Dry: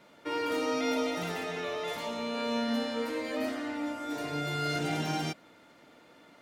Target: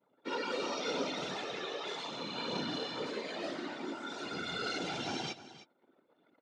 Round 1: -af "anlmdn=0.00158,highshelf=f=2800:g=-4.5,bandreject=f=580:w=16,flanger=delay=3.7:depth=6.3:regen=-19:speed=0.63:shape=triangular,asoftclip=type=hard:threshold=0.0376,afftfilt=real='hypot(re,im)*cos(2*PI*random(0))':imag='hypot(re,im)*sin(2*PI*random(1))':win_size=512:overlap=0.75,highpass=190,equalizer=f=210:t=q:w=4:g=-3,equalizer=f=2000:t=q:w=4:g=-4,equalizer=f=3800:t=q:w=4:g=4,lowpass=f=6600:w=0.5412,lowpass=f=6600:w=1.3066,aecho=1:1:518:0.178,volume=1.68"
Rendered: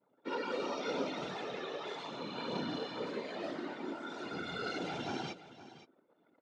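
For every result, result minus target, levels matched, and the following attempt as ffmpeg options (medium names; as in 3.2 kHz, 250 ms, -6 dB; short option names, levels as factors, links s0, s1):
echo 208 ms late; 4 kHz band -4.0 dB
-af "anlmdn=0.00158,highshelf=f=2800:g=-4.5,bandreject=f=580:w=16,flanger=delay=3.7:depth=6.3:regen=-19:speed=0.63:shape=triangular,asoftclip=type=hard:threshold=0.0376,afftfilt=real='hypot(re,im)*cos(2*PI*random(0))':imag='hypot(re,im)*sin(2*PI*random(1))':win_size=512:overlap=0.75,highpass=190,equalizer=f=210:t=q:w=4:g=-3,equalizer=f=2000:t=q:w=4:g=-4,equalizer=f=3800:t=q:w=4:g=4,lowpass=f=6600:w=0.5412,lowpass=f=6600:w=1.3066,aecho=1:1:310:0.178,volume=1.68"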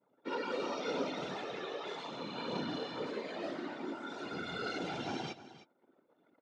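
4 kHz band -4.0 dB
-af "anlmdn=0.00158,highshelf=f=2800:g=5,bandreject=f=580:w=16,flanger=delay=3.7:depth=6.3:regen=-19:speed=0.63:shape=triangular,asoftclip=type=hard:threshold=0.0376,afftfilt=real='hypot(re,im)*cos(2*PI*random(0))':imag='hypot(re,im)*sin(2*PI*random(1))':win_size=512:overlap=0.75,highpass=190,equalizer=f=210:t=q:w=4:g=-3,equalizer=f=2000:t=q:w=4:g=-4,equalizer=f=3800:t=q:w=4:g=4,lowpass=f=6600:w=0.5412,lowpass=f=6600:w=1.3066,aecho=1:1:310:0.178,volume=1.68"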